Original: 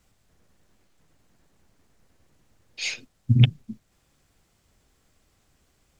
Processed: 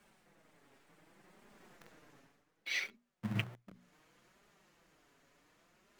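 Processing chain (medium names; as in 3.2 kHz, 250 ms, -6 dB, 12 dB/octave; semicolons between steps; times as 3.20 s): Doppler pass-by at 1.72 s, 39 m/s, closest 8.8 m; flange 0.67 Hz, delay 4.8 ms, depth 2.6 ms, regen -11%; hum notches 60/120/180/240 Hz; in parallel at -4 dB: companded quantiser 4-bit; on the sum: three-band isolator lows -16 dB, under 160 Hz, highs -16 dB, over 2.4 kHz; reverse; upward compressor, threshold -58 dBFS; reverse; treble shelf 2.1 kHz +10 dB; trim +5 dB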